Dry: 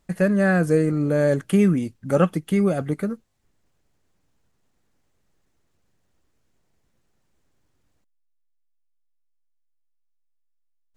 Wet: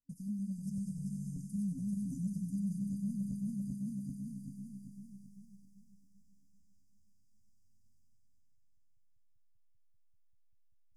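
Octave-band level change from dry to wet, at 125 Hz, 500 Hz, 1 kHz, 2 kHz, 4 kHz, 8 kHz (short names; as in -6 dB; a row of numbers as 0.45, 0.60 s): -15.0 dB, under -40 dB, under -40 dB, under -40 dB, under -20 dB, -12.0 dB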